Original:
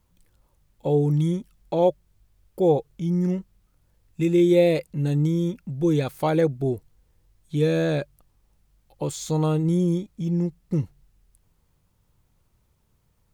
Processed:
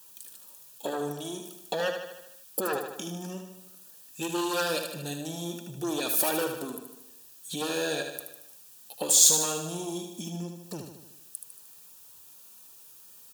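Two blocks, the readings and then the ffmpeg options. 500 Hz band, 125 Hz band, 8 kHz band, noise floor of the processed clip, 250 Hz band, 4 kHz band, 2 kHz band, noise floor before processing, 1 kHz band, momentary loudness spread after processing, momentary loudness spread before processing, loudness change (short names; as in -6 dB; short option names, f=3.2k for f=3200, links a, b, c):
-10.0 dB, -18.0 dB, +18.0 dB, -52 dBFS, -12.5 dB, +8.5 dB, +2.0 dB, -67 dBFS, -2.5 dB, 21 LU, 11 LU, -4.0 dB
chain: -af "aeval=exprs='0.398*(cos(1*acos(clip(val(0)/0.398,-1,1)))-cos(1*PI/2))+0.178*(cos(5*acos(clip(val(0)/0.398,-1,1)))-cos(5*PI/2))':c=same,acompressor=threshold=-24dB:ratio=6,crystalizer=i=9:c=0,highpass=250,flanger=delay=1.8:depth=2.8:regen=-28:speed=1.4:shape=triangular,asuperstop=centerf=2100:order=12:qfactor=5.4,aecho=1:1:76|152|228|304|380|456|532:0.473|0.27|0.154|0.0876|0.0499|0.0285|0.0162,volume=-3.5dB"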